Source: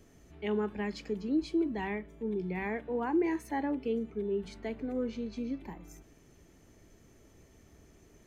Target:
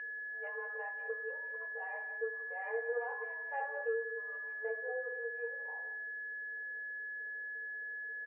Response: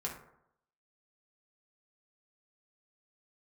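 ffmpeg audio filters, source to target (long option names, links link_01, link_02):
-filter_complex "[0:a]adynamicsmooth=sensitivity=0.5:basefreq=580[link_01];[1:a]atrim=start_sample=2205,afade=type=out:start_time=0.16:duration=0.01,atrim=end_sample=7497[link_02];[link_01][link_02]afir=irnorm=-1:irlink=0,flanger=delay=8.5:depth=9.5:regen=-36:speed=0.31:shape=triangular,aecho=1:1:177:0.2,acompressor=threshold=-43dB:ratio=6,aeval=exprs='val(0)+0.00316*sin(2*PI*1700*n/s)':channel_layout=same,afftfilt=real='re*between(b*sr/4096,440,3000)':imag='im*between(b*sr/4096,440,3000)':win_size=4096:overlap=0.75,volume=10dB"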